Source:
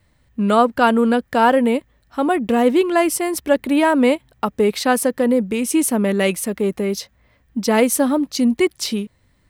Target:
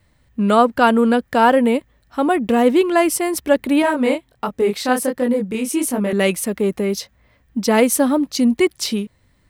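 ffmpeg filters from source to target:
-filter_complex "[0:a]asettb=1/sr,asplit=3[s0][s1][s2];[s0]atrim=end=3.824[s3];[s1]atrim=start=3.82:end=6.13,asetpts=PTS-STARTPTS,afade=t=in:d=0.004:c=qsin,afade=t=out:st=2.306:d=0.004:c=qsin,flanger=delay=20:depth=7.9:speed=1.4[s4];[s2]atrim=start=6.126[s5];[s3][s4]acrossfade=d=0.004:c1=hsin:c2=qsin[s6];[s6][s5]acrossfade=d=0.004:c1=qsin:c2=hsin,volume=1.12"

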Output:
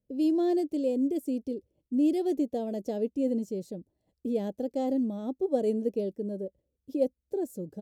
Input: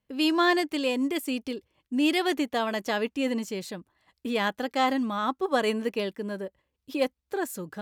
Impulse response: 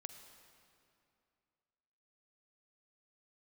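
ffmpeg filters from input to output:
-af "firequalizer=gain_entry='entry(550,0);entry(1100,-30);entry(5700,-12)':delay=0.05:min_phase=1"

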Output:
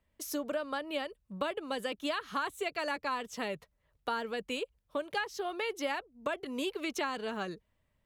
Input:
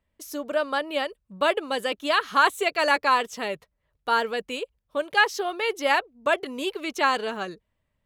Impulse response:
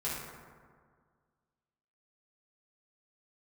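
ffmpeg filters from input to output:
-filter_complex "[0:a]acrossover=split=210[s0][s1];[s1]acompressor=threshold=0.0224:ratio=5[s2];[s0][s2]amix=inputs=2:normalize=0"

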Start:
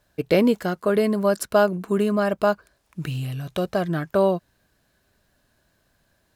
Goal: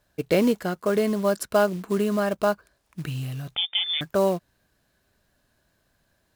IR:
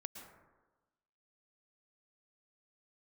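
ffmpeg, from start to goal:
-filter_complex "[0:a]acrusher=bits=5:mode=log:mix=0:aa=0.000001,asettb=1/sr,asplit=3[s0][s1][s2];[s0]atrim=end=3.554[s3];[s1]atrim=start=3.55:end=4.01,asetpts=PTS-STARTPTS,afade=t=in:d=0.004:c=qsin,afade=t=out:st=0.456:d=0.004:c=qsin,lowpass=f=3100:t=q:w=0.5098,lowpass=f=3100:t=q:w=0.6013,lowpass=f=3100:t=q:w=0.9,lowpass=f=3100:t=q:w=2.563,afreqshift=-3700[s4];[s2]atrim=start=4.006[s5];[s3][s4]acrossfade=d=0.004:c1=hsin:c2=qsin[s6];[s6][s5]acrossfade=d=0.004:c1=qsin:c2=hsin,volume=0.75"

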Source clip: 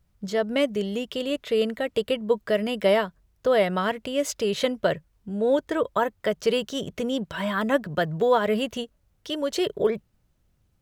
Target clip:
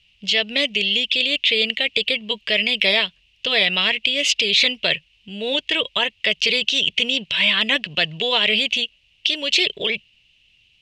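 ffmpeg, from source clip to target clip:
-af "aexciter=amount=13:drive=6.1:freq=2200,lowpass=f=2800:t=q:w=8.1,afftfilt=real='re*lt(hypot(re,im),1.58)':imag='im*lt(hypot(re,im),1.58)':win_size=1024:overlap=0.75,volume=0.631"

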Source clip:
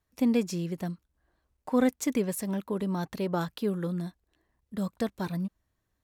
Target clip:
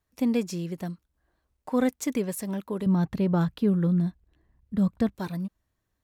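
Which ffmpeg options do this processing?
-filter_complex "[0:a]asettb=1/sr,asplit=3[s0][s1][s2];[s0]atrim=end=2.864[s3];[s1]atrim=start=2.86:end=5.15,asetpts=PTS-STARTPTS,afade=t=in:d=0.004:c=qsin,afade=t=out:st=2.286:d=0.004:c=qsin,bass=f=250:g=12,treble=f=4000:g=-7[s4];[s2]atrim=start=5.146[s5];[s3][s4]acrossfade=d=0.004:c1=hsin:c2=qsin[s6];[s6][s5]acrossfade=d=0.004:c1=qsin:c2=hsin"

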